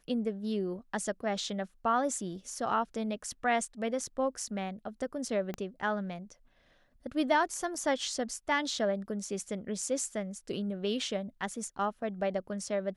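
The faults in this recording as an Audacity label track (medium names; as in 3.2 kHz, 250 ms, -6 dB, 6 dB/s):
5.540000	5.540000	pop -23 dBFS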